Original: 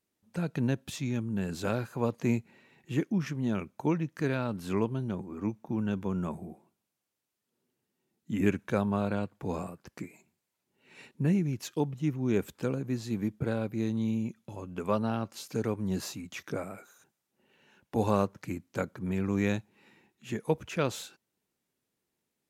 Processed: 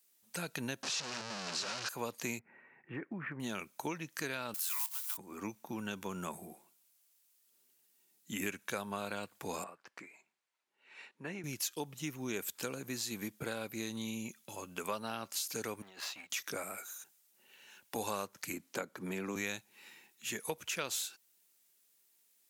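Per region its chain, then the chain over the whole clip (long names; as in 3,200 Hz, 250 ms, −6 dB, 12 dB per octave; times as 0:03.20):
0:00.83–0:01.89: sign of each sample alone + loudspeaker in its box 120–5,400 Hz, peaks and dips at 280 Hz −6 dB, 2,100 Hz −7 dB, 3,400 Hz −8 dB
0:02.39–0:03.40: Butterworth low-pass 2,000 Hz + downward compressor, threshold −28 dBFS
0:04.54–0:05.18: one scale factor per block 5 bits + linear-phase brick-wall high-pass 850 Hz + high-shelf EQ 7,000 Hz +10.5 dB
0:09.64–0:11.44: low-pass filter 1,200 Hz + spectral tilt +4.5 dB per octave
0:15.82–0:16.30: mu-law and A-law mismatch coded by A + three-way crossover with the lows and the highs turned down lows −16 dB, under 470 Hz, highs −23 dB, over 3,600 Hz + compressor whose output falls as the input rises −50 dBFS
0:18.53–0:19.36: high-pass filter 230 Hz + spectral tilt −2.5 dB per octave + multiband upward and downward compressor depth 40%
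whole clip: spectral tilt +4.5 dB per octave; downward compressor 3 to 1, threshold −37 dBFS; level +1 dB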